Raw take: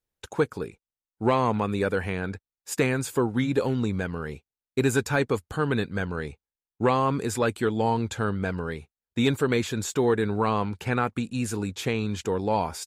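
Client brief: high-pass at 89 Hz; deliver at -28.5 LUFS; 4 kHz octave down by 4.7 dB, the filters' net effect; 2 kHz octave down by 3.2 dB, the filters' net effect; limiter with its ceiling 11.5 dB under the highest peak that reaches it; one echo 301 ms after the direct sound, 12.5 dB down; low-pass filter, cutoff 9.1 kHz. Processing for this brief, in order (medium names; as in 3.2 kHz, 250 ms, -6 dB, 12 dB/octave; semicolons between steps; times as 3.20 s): high-pass 89 Hz; low-pass 9.1 kHz; peaking EQ 2 kHz -3.5 dB; peaking EQ 4 kHz -4.5 dB; peak limiter -22 dBFS; delay 301 ms -12.5 dB; trim +4.5 dB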